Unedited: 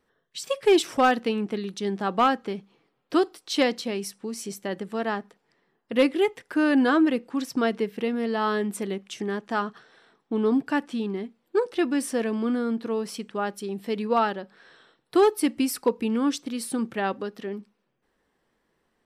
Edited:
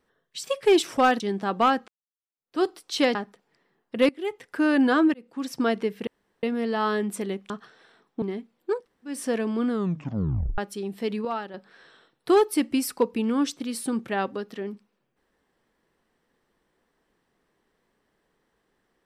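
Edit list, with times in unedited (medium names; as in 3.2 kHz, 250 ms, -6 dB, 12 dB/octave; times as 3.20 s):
1.20–1.78 s: delete
2.46–3.21 s: fade in exponential
3.73–5.12 s: delete
6.06–6.55 s: fade in, from -19.5 dB
7.11–7.51 s: fade in
8.04 s: insert room tone 0.36 s
9.11–9.63 s: delete
10.35–11.08 s: delete
11.62–12.00 s: room tone, crossfade 0.24 s
12.56 s: tape stop 0.88 s
14.11–14.40 s: gain -8 dB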